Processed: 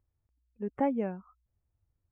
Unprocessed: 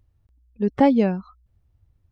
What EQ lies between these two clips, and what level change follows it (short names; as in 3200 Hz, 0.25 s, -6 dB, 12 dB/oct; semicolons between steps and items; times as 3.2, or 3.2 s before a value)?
Butterworth band-stop 4300 Hz, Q 0.92; low shelf 280 Hz -8 dB; high shelf 2900 Hz -9.5 dB; -9.0 dB